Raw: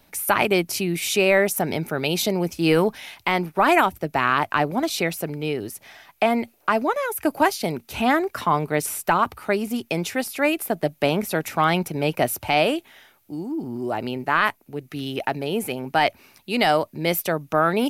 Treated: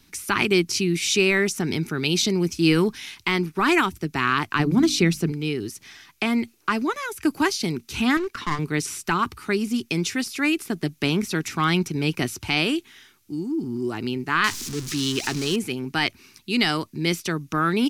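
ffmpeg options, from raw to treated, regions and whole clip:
-filter_complex "[0:a]asettb=1/sr,asplit=3[a][b][c];[a]atrim=end=4.594[d];[b]atrim=start=4.59:end=5.32,asetpts=PTS-STARTPTS,afade=t=in:d=0.004:c=qsin,afade=t=out:st=0.726:d=0.004:c=qsin,lowshelf=f=330:g=10.5,bandreject=f=50:t=h:w=6,bandreject=f=100:t=h:w=6,bandreject=f=150:t=h:w=6,bandreject=f=200:t=h:w=6,bandreject=f=250:t=h:w=6,bandreject=f=300:t=h:w=6[e];[c]atrim=start=5.316[f];[d][e]acrossfade=d=0.004:c1=hsin:c2=qsin[g];[g][f]acrossfade=d=0.004:c1=qsin:c2=hsin,asettb=1/sr,asplit=3[h][i][j];[h]atrim=end=8.174[k];[i]atrim=start=8.17:end=8.59,asetpts=PTS-STARTPTS,afade=t=in:d=0.004:c=qsin,afade=t=out:st=0.416:d=0.004:c=qsin,acrossover=split=4500[l][m];[m]acompressor=threshold=-51dB:ratio=4:attack=1:release=60[n];[l][n]amix=inputs=2:normalize=0,bass=f=250:g=-9,treble=f=4k:g=-3,aeval=exprs='clip(val(0),-1,0.0501)':c=same[o];[j]atrim=start=8.586[p];[k][o]acrossfade=d=0.004:c1=hsin:c2=qsin[q];[q][p]acrossfade=d=0.004:c1=qsin:c2=hsin,asettb=1/sr,asplit=3[r][s][t];[r]atrim=end=14.444[u];[s]atrim=start=14.44:end=15.56,asetpts=PTS-STARTPTS,afade=t=in:d=0.004:c=qsin,afade=t=out:st=1.116:d=0.004:c=qsin,aeval=exprs='val(0)+0.5*0.0299*sgn(val(0))':c=same,bass=f=250:g=-1,treble=f=4k:g=12[v];[t]atrim=start=15.556[w];[u][v]acrossfade=d=0.004:c1=hsin:c2=qsin[x];[x][w]acrossfade=d=0.004:c1=qsin:c2=hsin,acrossover=split=7500[y][z];[z]acompressor=threshold=-39dB:ratio=4:attack=1:release=60[aa];[y][aa]amix=inputs=2:normalize=0,firequalizer=gain_entry='entry(370,0);entry(580,-19);entry(1100,-4);entry(5700,5);entry(14000,-7)':delay=0.05:min_phase=1,volume=2dB"

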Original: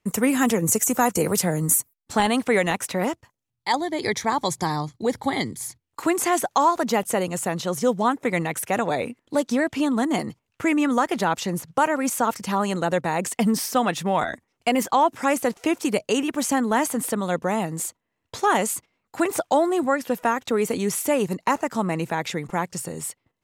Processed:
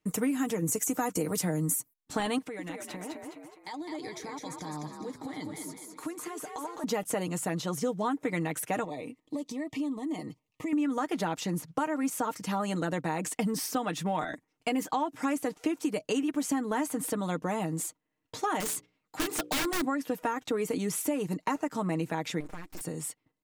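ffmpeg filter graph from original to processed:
-filter_complex "[0:a]asettb=1/sr,asplit=3[a][b][c];[a]atrim=end=2.384[d];[b]atrim=start=2.38:end=6.84,asetpts=PTS-STARTPTS,afade=t=in:d=0.004:c=qsin,afade=t=out:st=4.456:d=0.004:c=qsin,acompressor=threshold=-34dB:ratio=4:attack=3.2:release=140:knee=1:detection=peak,asplit=7[e][f][g][h][i][j][k];[f]adelay=208,afreqshift=50,volume=-4.5dB[l];[g]adelay=416,afreqshift=100,volume=-11.1dB[m];[h]adelay=624,afreqshift=150,volume=-17.6dB[n];[i]adelay=832,afreqshift=200,volume=-24.2dB[o];[j]adelay=1040,afreqshift=250,volume=-30.7dB[p];[k]adelay=1248,afreqshift=300,volume=-37.3dB[q];[e][l][m][n][o][p][q]amix=inputs=7:normalize=0,atrim=end_sample=196686[r];[c]atrim=start=6.836[s];[d][r]acrossfade=d=0.004:c1=hsin:c2=qsin[t];[t][s]acrossfade=d=0.004:c1=qsin:c2=hsin,asettb=1/sr,asplit=3[u][v][w];[u]atrim=end=8.844[x];[v]atrim=start=8.84:end=10.73,asetpts=PTS-STARTPTS,afade=t=in:d=0.004:c=qsin,afade=t=out:st=1.886:d=0.004:c=qsin,acompressor=threshold=-31dB:ratio=4:attack=3.2:release=140:knee=1:detection=peak,asuperstop=centerf=1500:order=12:qfactor=3.1[y];[w]atrim=start=10.726[z];[x][y]acrossfade=d=0.004:c1=hsin:c2=qsin[aa];[aa][z]acrossfade=d=0.004:c1=qsin:c2=hsin,asettb=1/sr,asplit=3[ab][ac][ad];[ab]atrim=end=18.604[ae];[ac]atrim=start=18.6:end=19.85,asetpts=PTS-STARTPTS,afade=t=in:d=0.004:c=qsin,afade=t=out:st=1.246:d=0.004:c=qsin,equalizer=f=4k:t=o:w=1.8:g=4,bandreject=f=60:t=h:w=6,bandreject=f=120:t=h:w=6,bandreject=f=180:t=h:w=6,bandreject=f=240:t=h:w=6,bandreject=f=300:t=h:w=6,bandreject=f=360:t=h:w=6,bandreject=f=420:t=h:w=6,bandreject=f=480:t=h:w=6,bandreject=f=540:t=h:w=6,aeval=exprs='(mod(7.08*val(0)+1,2)-1)/7.08':c=same[af];[ad]atrim=start=19.846[ag];[ae][af]acrossfade=d=0.004:c1=hsin:c2=qsin[ah];[ah][ag]acrossfade=d=0.004:c1=qsin:c2=hsin,asettb=1/sr,asplit=3[ai][aj][ak];[ai]atrim=end=22.404[al];[aj]atrim=start=22.4:end=22.81,asetpts=PTS-STARTPTS,afade=t=in:d=0.004:c=qsin,afade=t=out:st=0.406:d=0.004:c=qsin,highpass=53,aeval=exprs='abs(val(0))':c=same,acompressor=threshold=-30dB:ratio=8:attack=3.2:release=140:knee=1:detection=peak[am];[ak]atrim=start=22.806[an];[al][am]acrossfade=d=0.004:c1=hsin:c2=qsin[ao];[ao][an]acrossfade=d=0.004:c1=qsin:c2=hsin,equalizer=f=270:w=2.4:g=7,aecho=1:1:6.5:0.54,acompressor=threshold=-19dB:ratio=6,volume=-7dB"

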